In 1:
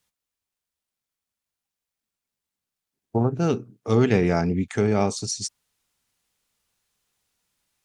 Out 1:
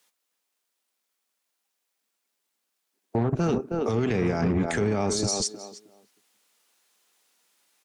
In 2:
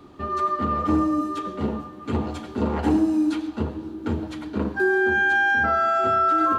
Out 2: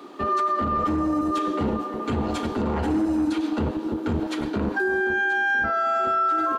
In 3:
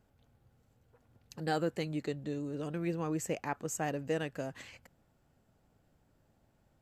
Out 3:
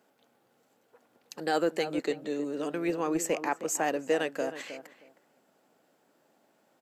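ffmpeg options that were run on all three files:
-filter_complex "[0:a]asplit=2[s0][s1];[s1]adelay=314,lowpass=f=1200:p=1,volume=0.299,asplit=2[s2][s3];[s3]adelay=314,lowpass=f=1200:p=1,volume=0.19,asplit=2[s4][s5];[s5]adelay=314,lowpass=f=1200:p=1,volume=0.19[s6];[s0][s2][s4][s6]amix=inputs=4:normalize=0,acrossover=split=240[s7][s8];[s7]acrusher=bits=4:mix=0:aa=0.5[s9];[s9][s8]amix=inputs=2:normalize=0,acompressor=threshold=0.0891:ratio=6,alimiter=limit=0.0631:level=0:latency=1:release=50,volume=2.37"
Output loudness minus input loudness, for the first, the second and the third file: -2.5 LU, -1.0 LU, +5.5 LU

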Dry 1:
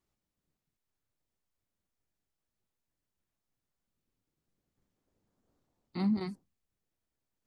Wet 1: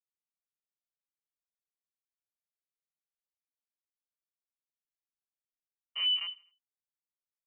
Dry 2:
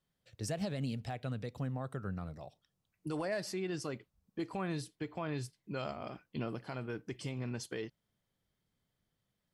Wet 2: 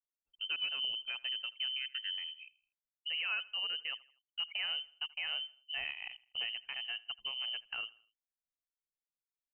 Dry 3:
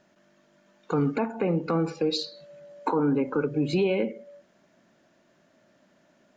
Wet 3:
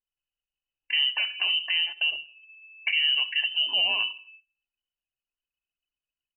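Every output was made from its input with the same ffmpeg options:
-af "lowpass=f=2700:t=q:w=0.5098,lowpass=f=2700:t=q:w=0.6013,lowpass=f=2700:t=q:w=0.9,lowpass=f=2700:t=q:w=2.563,afreqshift=-3200,adynamicequalizer=threshold=0.0112:dfrequency=2200:dqfactor=3.3:tfrequency=2200:tqfactor=3.3:attack=5:release=100:ratio=0.375:range=1.5:mode=cutabove:tftype=bell,anlmdn=0.1,aecho=1:1:81|162|243:0.0794|0.0342|0.0147"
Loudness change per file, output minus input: +4.0 LU, +3.0 LU, +3.5 LU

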